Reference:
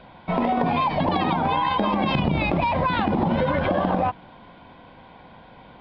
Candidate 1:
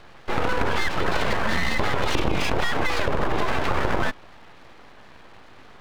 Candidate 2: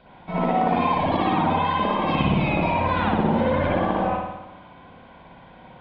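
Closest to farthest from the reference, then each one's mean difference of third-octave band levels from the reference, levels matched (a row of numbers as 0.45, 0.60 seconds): 2, 1; 3.0, 8.5 decibels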